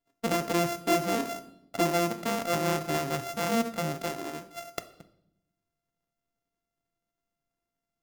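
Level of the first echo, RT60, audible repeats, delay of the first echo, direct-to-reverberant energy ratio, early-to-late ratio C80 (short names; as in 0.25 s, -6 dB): none, 0.80 s, none, none, 11.0 dB, 18.5 dB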